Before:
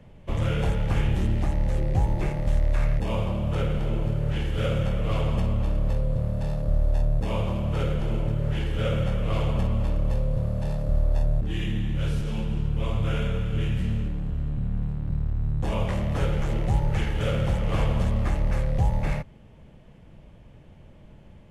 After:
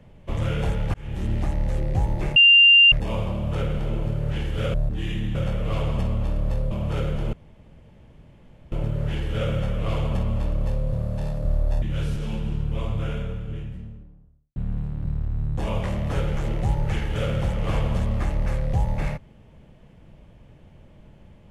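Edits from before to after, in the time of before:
0.94–1.34 fade in
2.36–2.92 bleep 2790 Hz -9.5 dBFS
6.1–7.54 cut
8.16 insert room tone 1.39 s
11.26–11.87 move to 4.74
12.53–14.61 studio fade out

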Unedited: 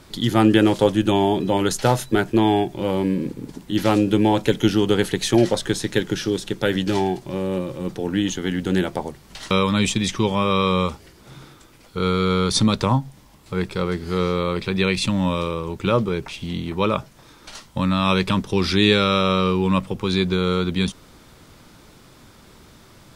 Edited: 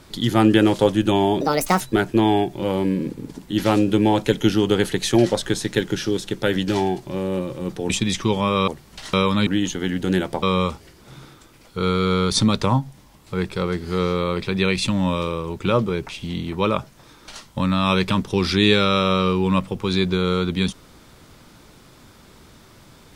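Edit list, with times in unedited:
1.41–2 speed 149%
8.09–9.05 swap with 9.84–10.62

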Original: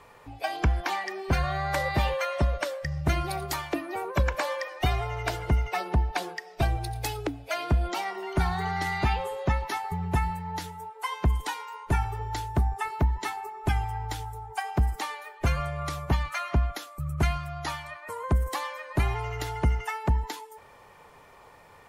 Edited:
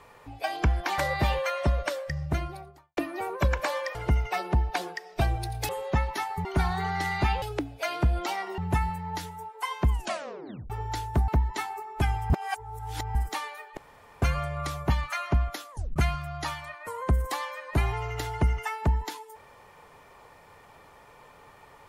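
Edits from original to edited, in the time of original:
0.98–1.73 cut
2.75–3.72 studio fade out
4.7–5.36 cut
7.1–8.26 swap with 9.23–9.99
11.31 tape stop 0.80 s
12.69–12.95 cut
13.97–14.82 reverse
15.44 insert room tone 0.45 s
16.93 tape stop 0.25 s

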